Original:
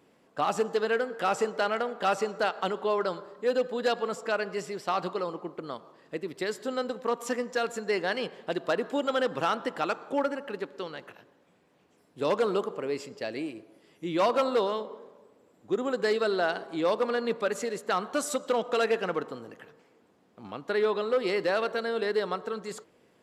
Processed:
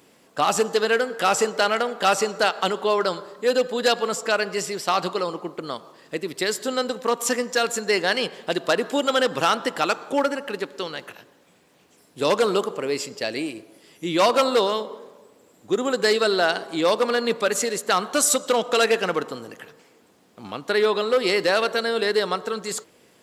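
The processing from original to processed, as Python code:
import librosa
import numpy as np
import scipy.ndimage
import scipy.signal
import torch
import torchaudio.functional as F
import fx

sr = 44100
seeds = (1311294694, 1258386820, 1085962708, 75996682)

y = fx.high_shelf(x, sr, hz=3200.0, db=12.0)
y = y * 10.0 ** (5.5 / 20.0)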